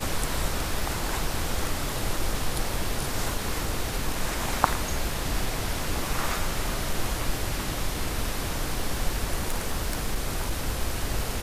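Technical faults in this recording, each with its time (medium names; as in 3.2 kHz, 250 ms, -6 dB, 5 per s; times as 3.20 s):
9.43–10.68 s: clipped -20.5 dBFS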